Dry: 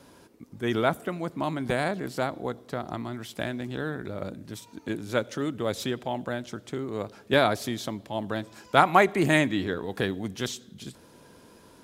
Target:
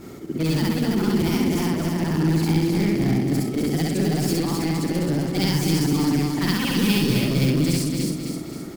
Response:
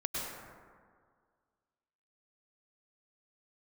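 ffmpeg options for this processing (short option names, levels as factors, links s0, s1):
-filter_complex "[0:a]afftfilt=real='re':imag='-im':win_size=8192:overlap=0.75,asetrate=59535,aresample=44100,acrossover=split=170|3000[s0][s1][s2];[s1]acompressor=threshold=0.00794:ratio=8[s3];[s0][s3][s2]amix=inputs=3:normalize=0,asplit=2[s4][s5];[s5]aeval=exprs='(mod(59.6*val(0)+1,2)-1)/59.6':c=same,volume=0.708[s6];[s4][s6]amix=inputs=2:normalize=0,lowshelf=f=410:t=q:w=1.5:g=10,asplit=2[s7][s8];[s8]aecho=0:1:261|522|783|1044|1305|1566:0.596|0.28|0.132|0.0618|0.0291|0.0137[s9];[s7][s9]amix=inputs=2:normalize=0,volume=2.66"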